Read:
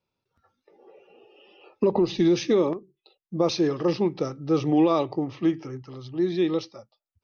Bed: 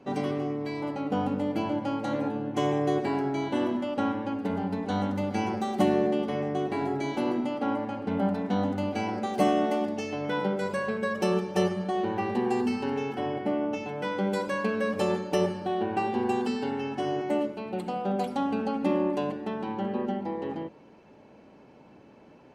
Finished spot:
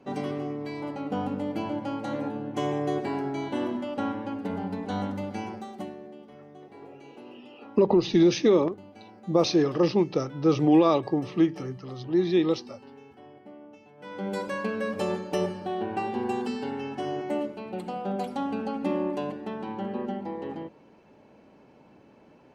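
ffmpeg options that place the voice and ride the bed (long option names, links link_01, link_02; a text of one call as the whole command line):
ffmpeg -i stem1.wav -i stem2.wav -filter_complex "[0:a]adelay=5950,volume=1dB[link_01];[1:a]volume=15dB,afade=type=out:start_time=5.03:duration=0.93:silence=0.141254,afade=type=in:start_time=13.97:duration=0.41:silence=0.141254[link_02];[link_01][link_02]amix=inputs=2:normalize=0" out.wav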